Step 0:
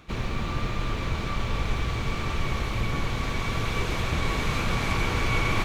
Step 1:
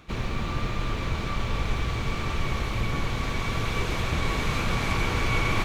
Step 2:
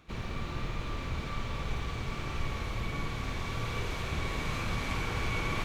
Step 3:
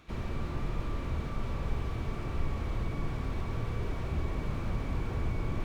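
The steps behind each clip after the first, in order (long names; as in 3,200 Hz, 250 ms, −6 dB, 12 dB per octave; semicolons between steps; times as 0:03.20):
no processing that can be heard
flutter between parallel walls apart 9.2 metres, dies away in 0.47 s; level −8 dB
on a send at −15.5 dB: convolution reverb RT60 0.90 s, pre-delay 3 ms; on the sum: slew-rate limiting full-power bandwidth 7 Hz; level +2 dB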